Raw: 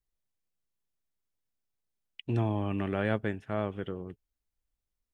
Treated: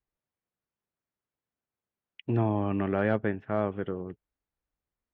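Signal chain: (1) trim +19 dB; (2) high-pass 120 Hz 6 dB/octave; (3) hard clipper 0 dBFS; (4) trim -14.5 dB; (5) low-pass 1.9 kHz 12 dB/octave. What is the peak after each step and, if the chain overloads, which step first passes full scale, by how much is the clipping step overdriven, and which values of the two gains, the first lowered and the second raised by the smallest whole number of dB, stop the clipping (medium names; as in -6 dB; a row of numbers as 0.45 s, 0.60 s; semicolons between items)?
+4.5 dBFS, +4.5 dBFS, 0.0 dBFS, -14.5 dBFS, -14.0 dBFS; step 1, 4.5 dB; step 1 +14 dB, step 4 -9.5 dB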